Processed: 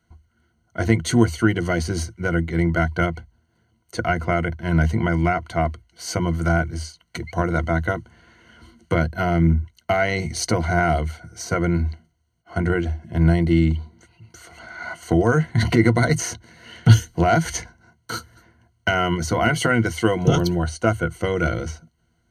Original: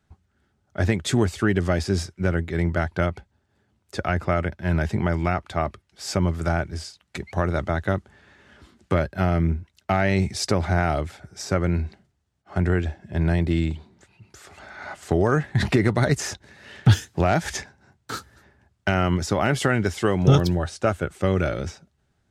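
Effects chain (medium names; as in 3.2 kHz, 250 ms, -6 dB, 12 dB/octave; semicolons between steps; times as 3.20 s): rippled EQ curve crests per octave 1.9, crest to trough 15 dB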